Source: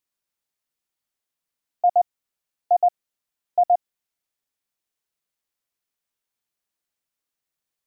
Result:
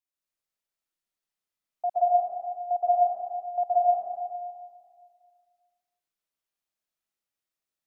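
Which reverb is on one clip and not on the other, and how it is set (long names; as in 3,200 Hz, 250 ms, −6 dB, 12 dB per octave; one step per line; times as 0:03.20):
comb and all-pass reverb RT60 1.9 s, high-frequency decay 0.85×, pre-delay 105 ms, DRR −5.5 dB
level −10.5 dB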